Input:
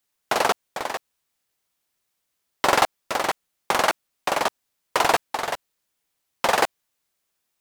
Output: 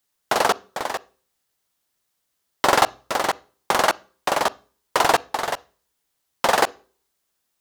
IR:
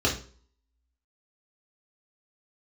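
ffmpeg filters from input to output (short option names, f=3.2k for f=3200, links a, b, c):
-filter_complex "[0:a]equalizer=f=2.4k:w=3.5:g=-3.5,asplit=2[a][b];[1:a]atrim=start_sample=2205,asetrate=42777,aresample=44100,adelay=38[c];[b][c]afir=irnorm=-1:irlink=0,volume=-35.5dB[d];[a][d]amix=inputs=2:normalize=0,volume=2dB"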